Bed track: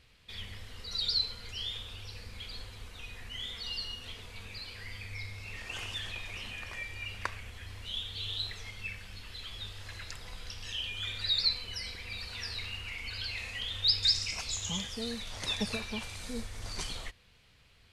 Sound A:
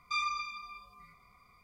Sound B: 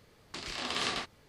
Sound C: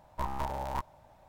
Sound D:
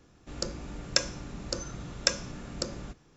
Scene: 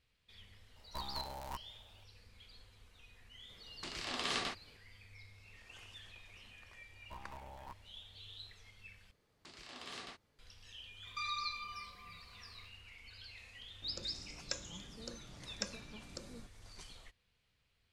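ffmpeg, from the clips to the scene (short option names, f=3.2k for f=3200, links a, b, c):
-filter_complex "[3:a]asplit=2[a][b];[2:a]asplit=2[c][d];[0:a]volume=-15.5dB[e];[a]highshelf=f=3.3k:g=10.5[f];[d]asoftclip=type=tanh:threshold=-19.5dB[g];[1:a]alimiter=level_in=8dB:limit=-24dB:level=0:latency=1:release=235,volume=-8dB[h];[e]asplit=2[i][j];[i]atrim=end=9.114[k];[g]atrim=end=1.28,asetpts=PTS-STARTPTS,volume=-14.5dB[l];[j]atrim=start=10.386[m];[f]atrim=end=1.28,asetpts=PTS-STARTPTS,volume=-11dB,afade=t=in:d=0.004:c=hsin,afade=t=out:st=1.276:d=0.004:c=hsin,adelay=760[n];[c]atrim=end=1.28,asetpts=PTS-STARTPTS,volume=-4dB,afade=t=in:d=0.004:c=hsin,afade=t=out:st=1.276:d=0.004:c=hsin,adelay=153909S[o];[b]atrim=end=1.28,asetpts=PTS-STARTPTS,volume=-16.5dB,afade=t=in:d=0.004:c=hsin,afade=t=out:st=1.276:d=0.004:c=hsin,adelay=6920[p];[h]atrim=end=1.63,asetpts=PTS-STARTPTS,volume=-0.5dB,afade=t=in:d=0.004:c=hsin,afade=t=out:st=1.626:d=0.004:c=hsin,adelay=487746S[q];[4:a]atrim=end=3.16,asetpts=PTS-STARTPTS,volume=-15dB,afade=t=in:d=0.004:c=hsin,afade=t=out:st=3.156:d=0.004:c=hsin,adelay=13550[r];[k][l]acrossfade=d=0.004:c1=hsin:c2=hsin[s];[s][m]acrossfade=d=0.004:c1=hsin:c2=hsin[t];[t][n][o][p][q][r]amix=inputs=6:normalize=0"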